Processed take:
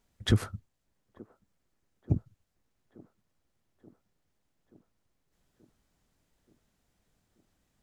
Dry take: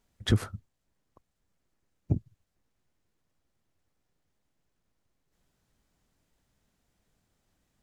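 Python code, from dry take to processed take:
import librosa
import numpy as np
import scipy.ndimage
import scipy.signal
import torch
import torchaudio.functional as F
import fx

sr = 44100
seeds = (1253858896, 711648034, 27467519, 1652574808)

y = fx.echo_wet_bandpass(x, sr, ms=880, feedback_pct=65, hz=490.0, wet_db=-18)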